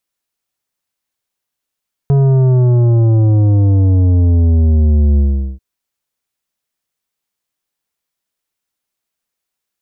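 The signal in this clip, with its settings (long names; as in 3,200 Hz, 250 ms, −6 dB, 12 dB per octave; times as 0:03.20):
bass drop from 140 Hz, over 3.49 s, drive 10 dB, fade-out 0.41 s, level −8.5 dB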